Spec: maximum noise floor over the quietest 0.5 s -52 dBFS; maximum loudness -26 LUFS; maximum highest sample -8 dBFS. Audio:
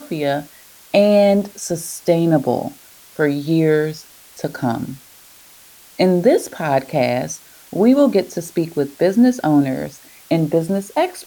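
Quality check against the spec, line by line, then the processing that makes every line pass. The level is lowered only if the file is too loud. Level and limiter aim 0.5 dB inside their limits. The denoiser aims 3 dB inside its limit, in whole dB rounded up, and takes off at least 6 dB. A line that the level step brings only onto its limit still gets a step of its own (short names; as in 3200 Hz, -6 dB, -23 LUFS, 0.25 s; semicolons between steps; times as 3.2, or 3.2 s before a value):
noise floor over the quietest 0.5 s -45 dBFS: fail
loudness -18.0 LUFS: fail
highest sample -2.5 dBFS: fail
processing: gain -8.5 dB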